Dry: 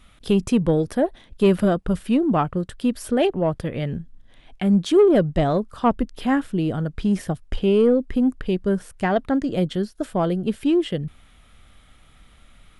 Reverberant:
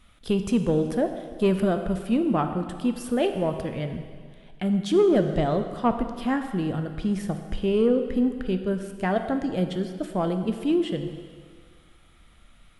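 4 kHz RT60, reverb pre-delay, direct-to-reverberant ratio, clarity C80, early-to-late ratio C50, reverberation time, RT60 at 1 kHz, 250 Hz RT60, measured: 1.9 s, 3 ms, 6.5 dB, 9.0 dB, 8.0 dB, 2.0 s, 2.0 s, 1.7 s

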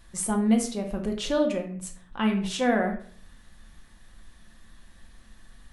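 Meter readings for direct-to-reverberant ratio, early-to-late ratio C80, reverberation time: 2.5 dB, 12.0 dB, 0.50 s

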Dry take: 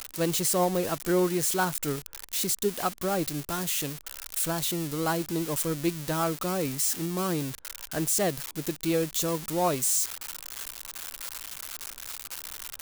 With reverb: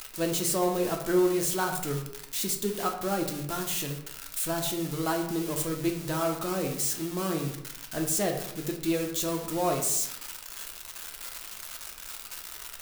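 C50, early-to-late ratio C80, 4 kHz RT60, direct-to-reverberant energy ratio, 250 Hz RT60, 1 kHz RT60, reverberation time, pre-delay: 7.0 dB, 10.0 dB, 0.45 s, 2.0 dB, 0.85 s, 0.75 s, 0.75 s, 3 ms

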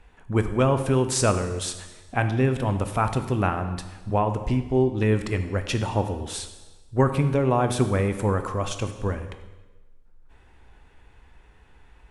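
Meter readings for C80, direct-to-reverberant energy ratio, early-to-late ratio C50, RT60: 11.5 dB, 8.0 dB, 10.0 dB, 1.2 s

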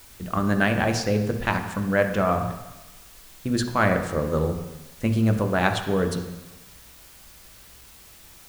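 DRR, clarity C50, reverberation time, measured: 5.0 dB, 7.5 dB, 1.1 s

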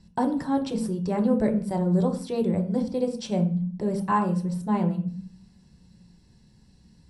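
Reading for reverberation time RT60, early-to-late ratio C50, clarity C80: 0.40 s, 10.5 dB, 14.0 dB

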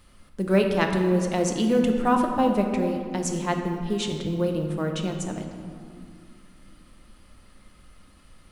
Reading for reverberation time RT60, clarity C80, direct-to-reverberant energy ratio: 2.1 s, 6.0 dB, 3.0 dB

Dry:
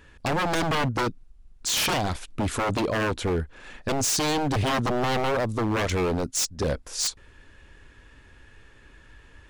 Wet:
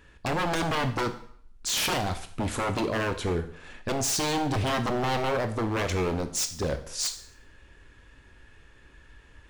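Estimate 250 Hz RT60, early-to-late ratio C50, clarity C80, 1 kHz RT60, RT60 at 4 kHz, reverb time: 0.60 s, 12.5 dB, 15.5 dB, 0.60 s, 0.55 s, 0.60 s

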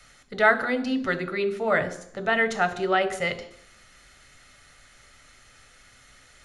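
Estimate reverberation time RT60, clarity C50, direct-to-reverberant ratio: 0.65 s, 13.5 dB, 9.5 dB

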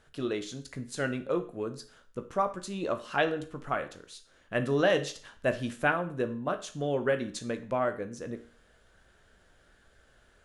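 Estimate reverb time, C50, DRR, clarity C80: 0.45 s, 13.0 dB, 7.0 dB, 18.0 dB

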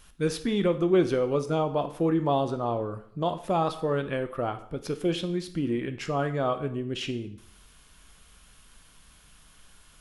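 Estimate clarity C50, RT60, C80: 13.5 dB, 0.65 s, 16.0 dB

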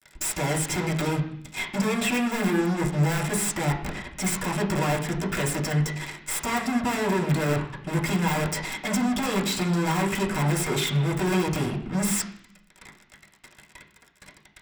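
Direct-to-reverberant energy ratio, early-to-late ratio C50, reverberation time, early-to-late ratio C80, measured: -4.5 dB, 9.0 dB, 0.65 s, 11.5 dB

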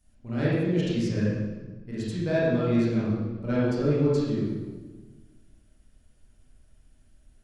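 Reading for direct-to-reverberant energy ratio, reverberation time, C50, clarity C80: -9.5 dB, 1.3 s, -3.0 dB, 0.5 dB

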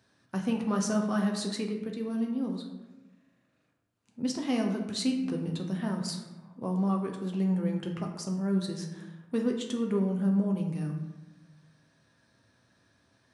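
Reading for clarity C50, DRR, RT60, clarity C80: 6.0 dB, 1.5 dB, 1.0 s, 8.0 dB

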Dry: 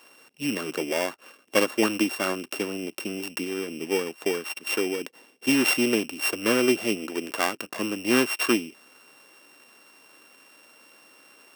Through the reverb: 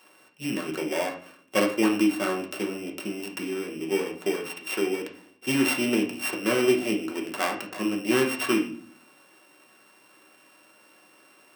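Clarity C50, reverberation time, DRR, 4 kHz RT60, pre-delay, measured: 8.5 dB, 0.50 s, -0.5 dB, 0.40 s, 5 ms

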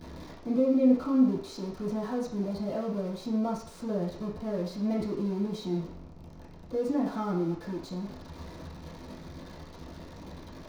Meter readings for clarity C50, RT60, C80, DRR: 5.5 dB, 0.55 s, 9.0 dB, -11.0 dB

